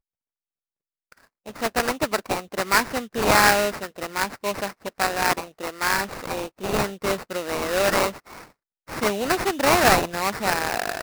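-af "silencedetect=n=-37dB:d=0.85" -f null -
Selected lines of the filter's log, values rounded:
silence_start: 0.00
silence_end: 1.12 | silence_duration: 1.12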